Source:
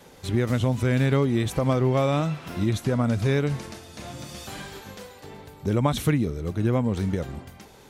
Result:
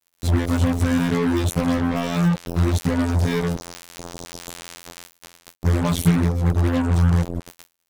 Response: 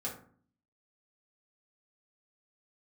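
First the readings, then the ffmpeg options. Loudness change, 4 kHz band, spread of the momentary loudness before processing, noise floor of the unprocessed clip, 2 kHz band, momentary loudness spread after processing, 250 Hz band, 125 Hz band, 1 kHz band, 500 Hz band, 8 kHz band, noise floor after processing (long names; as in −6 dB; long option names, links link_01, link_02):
+3.5 dB, +3.5 dB, 18 LU, −49 dBFS, +3.5 dB, 17 LU, +4.5 dB, +3.5 dB, +2.0 dB, −1.5 dB, +6.0 dB, −71 dBFS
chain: -af "bass=frequency=250:gain=14,treble=frequency=4000:gain=9,afftfilt=real='hypot(re,im)*cos(PI*b)':imag='0':win_size=2048:overlap=0.75,acrusher=bits=3:mix=0:aa=0.5"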